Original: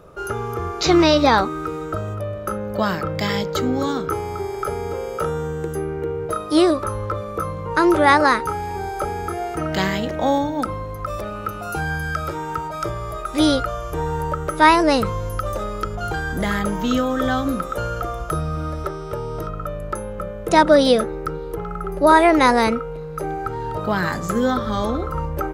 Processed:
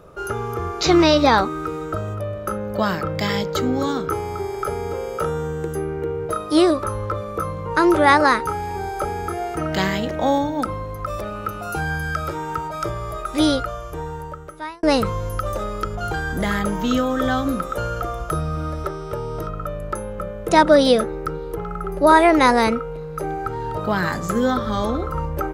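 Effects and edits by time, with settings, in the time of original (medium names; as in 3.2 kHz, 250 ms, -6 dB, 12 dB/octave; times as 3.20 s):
13.29–14.83 s: fade out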